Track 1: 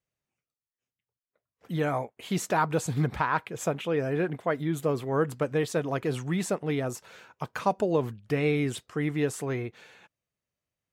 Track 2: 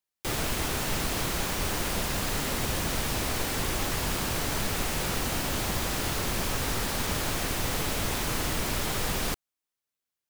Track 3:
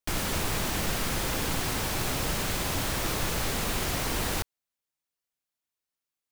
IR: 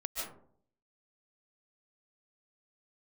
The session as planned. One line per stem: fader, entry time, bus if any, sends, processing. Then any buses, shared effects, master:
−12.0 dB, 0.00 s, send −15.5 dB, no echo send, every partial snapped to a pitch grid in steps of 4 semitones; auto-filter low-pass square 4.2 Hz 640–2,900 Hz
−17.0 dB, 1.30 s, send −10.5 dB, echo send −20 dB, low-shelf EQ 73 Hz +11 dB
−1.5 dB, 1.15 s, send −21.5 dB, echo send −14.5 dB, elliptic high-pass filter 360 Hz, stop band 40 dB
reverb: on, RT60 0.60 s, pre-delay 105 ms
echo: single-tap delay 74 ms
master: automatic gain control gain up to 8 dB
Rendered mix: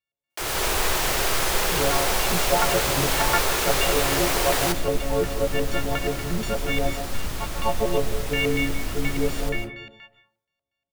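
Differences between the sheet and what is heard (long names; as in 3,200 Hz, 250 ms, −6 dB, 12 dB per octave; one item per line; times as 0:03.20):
stem 2: entry 1.30 s → 0.15 s
stem 3: entry 1.15 s → 0.30 s
reverb return +7.5 dB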